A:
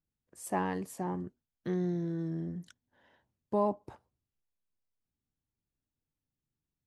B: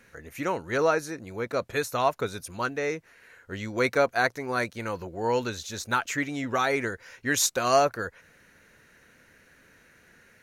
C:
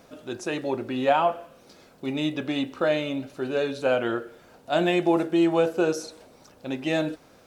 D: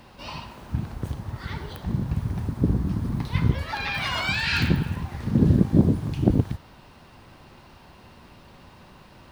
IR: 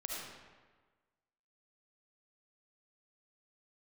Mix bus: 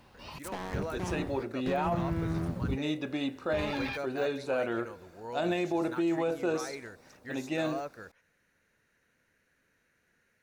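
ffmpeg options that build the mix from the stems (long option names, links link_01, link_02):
-filter_complex "[0:a]alimiter=level_in=5.5dB:limit=-24dB:level=0:latency=1,volume=-5.5dB,aeval=exprs='val(0)+0.00158*(sin(2*PI*60*n/s)+sin(2*PI*2*60*n/s)/2+sin(2*PI*3*60*n/s)/3+sin(2*PI*4*60*n/s)/4+sin(2*PI*5*60*n/s)/5)':channel_layout=same,acrusher=bits=5:mix=0:aa=0.5,volume=1dB,asplit=2[link_01][link_02];[1:a]deesser=0.85,volume=-15dB[link_03];[2:a]bandreject=frequency=3100:width=7.5,adelay=650,volume=-5.5dB[link_04];[3:a]volume=-9dB[link_05];[link_02]apad=whole_len=410966[link_06];[link_05][link_06]sidechaingate=range=-33dB:threshold=-58dB:ratio=16:detection=peak[link_07];[link_01][link_03][link_04][link_07]amix=inputs=4:normalize=0,alimiter=limit=-21.5dB:level=0:latency=1:release=21"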